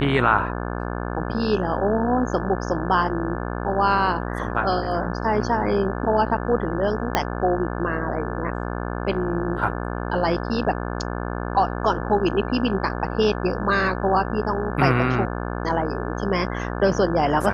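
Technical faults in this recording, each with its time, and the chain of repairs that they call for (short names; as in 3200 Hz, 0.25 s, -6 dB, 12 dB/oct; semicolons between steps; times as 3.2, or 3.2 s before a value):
buzz 60 Hz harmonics 29 -28 dBFS
7.15 pop -4 dBFS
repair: de-click; de-hum 60 Hz, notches 29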